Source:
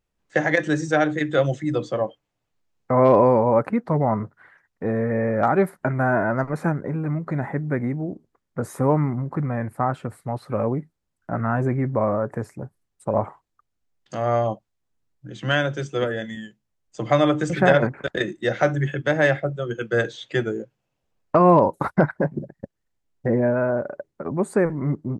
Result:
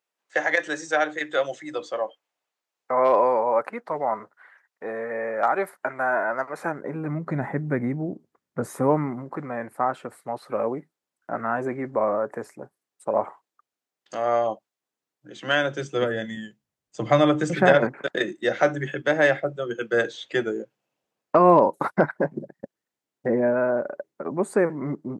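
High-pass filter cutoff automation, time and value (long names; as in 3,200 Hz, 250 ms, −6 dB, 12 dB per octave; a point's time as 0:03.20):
0:06.52 590 Hz
0:07.27 140 Hz
0:08.59 140 Hz
0:09.37 340 Hz
0:15.43 340 Hz
0:16.23 100 Hz
0:17.13 100 Hz
0:17.94 240 Hz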